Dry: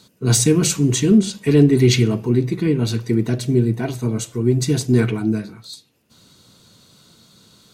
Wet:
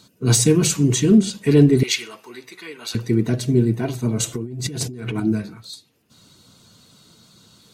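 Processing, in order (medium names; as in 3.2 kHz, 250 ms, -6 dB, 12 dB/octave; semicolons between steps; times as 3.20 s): coarse spectral quantiser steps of 15 dB; 1.83–2.95 s: high-pass 1.1 kHz 12 dB/octave; 4.20–5.20 s: compressor with a negative ratio -28 dBFS, ratio -1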